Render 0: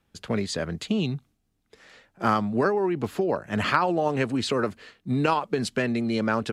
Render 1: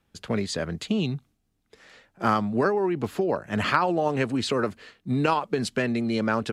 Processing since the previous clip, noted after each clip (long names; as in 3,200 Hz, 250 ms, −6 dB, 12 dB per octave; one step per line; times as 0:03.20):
no processing that can be heard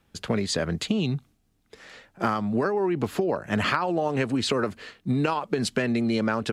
downward compressor, threshold −26 dBFS, peak gain reduction 10 dB
level +5 dB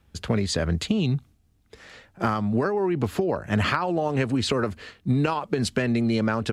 parametric band 69 Hz +12.5 dB 1.3 octaves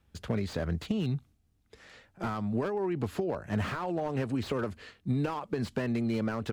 slew-rate limiting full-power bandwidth 69 Hz
level −7 dB